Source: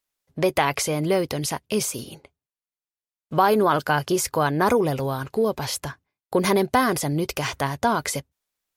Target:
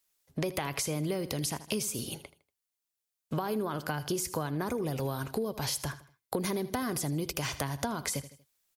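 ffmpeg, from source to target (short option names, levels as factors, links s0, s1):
-filter_complex "[0:a]highshelf=f=3800:g=8.5,acrossover=split=340[s0][s1];[s1]acompressor=threshold=0.0282:ratio=2[s2];[s0][s2]amix=inputs=2:normalize=0,aecho=1:1:79|158|237:0.141|0.0523|0.0193,acompressor=threshold=0.0355:ratio=6"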